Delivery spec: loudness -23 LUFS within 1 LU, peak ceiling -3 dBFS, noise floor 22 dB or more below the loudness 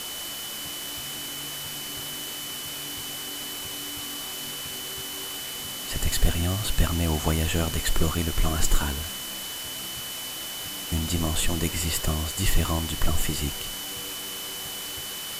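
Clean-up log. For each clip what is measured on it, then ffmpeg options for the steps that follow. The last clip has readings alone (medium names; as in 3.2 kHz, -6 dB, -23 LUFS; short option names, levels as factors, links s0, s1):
steady tone 3 kHz; tone level -37 dBFS; noise floor -35 dBFS; noise floor target -51 dBFS; loudness -28.5 LUFS; peak level -7.5 dBFS; loudness target -23.0 LUFS
-> -af "bandreject=f=3000:w=30"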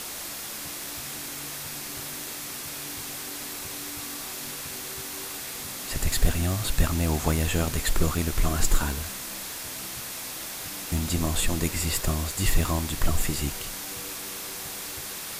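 steady tone not found; noise floor -36 dBFS; noise floor target -52 dBFS
-> -af "afftdn=nr=16:nf=-36"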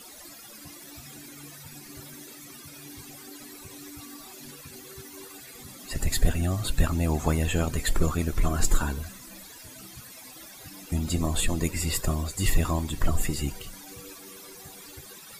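noise floor -46 dBFS; noise floor target -50 dBFS
-> -af "afftdn=nr=6:nf=-46"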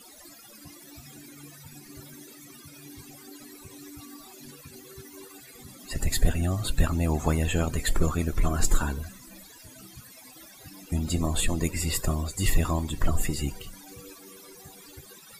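noise floor -50 dBFS; loudness -28.0 LUFS; peak level -8.5 dBFS; loudness target -23.0 LUFS
-> -af "volume=1.78"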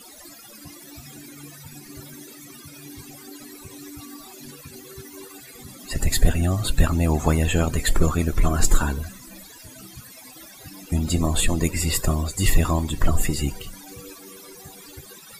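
loudness -23.0 LUFS; peak level -3.5 dBFS; noise floor -45 dBFS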